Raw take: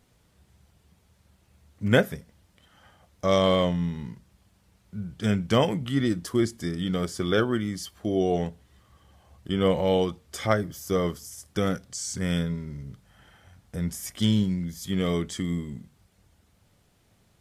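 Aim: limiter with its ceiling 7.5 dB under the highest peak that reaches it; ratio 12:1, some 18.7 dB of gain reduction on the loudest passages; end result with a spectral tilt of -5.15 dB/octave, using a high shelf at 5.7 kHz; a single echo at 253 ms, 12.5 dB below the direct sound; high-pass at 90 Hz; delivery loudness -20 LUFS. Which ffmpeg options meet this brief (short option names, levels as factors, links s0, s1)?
-af "highpass=90,highshelf=f=5700:g=-7.5,acompressor=threshold=0.0224:ratio=12,alimiter=level_in=1.68:limit=0.0631:level=0:latency=1,volume=0.596,aecho=1:1:253:0.237,volume=10"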